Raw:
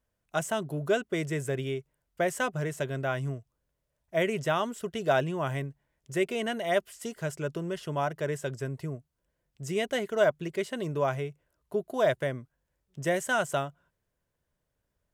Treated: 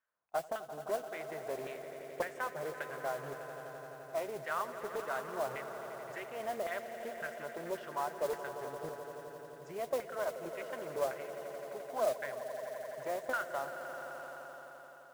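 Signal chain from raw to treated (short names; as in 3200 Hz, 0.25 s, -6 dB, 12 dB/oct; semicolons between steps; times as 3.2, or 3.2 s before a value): compressor 2.5:1, threshold -33 dBFS, peak gain reduction 10 dB; LFO band-pass saw down 1.8 Hz 480–1600 Hz; swelling echo 86 ms, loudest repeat 5, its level -14 dB; modulation noise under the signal 16 dB; Doppler distortion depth 0.27 ms; gain +3 dB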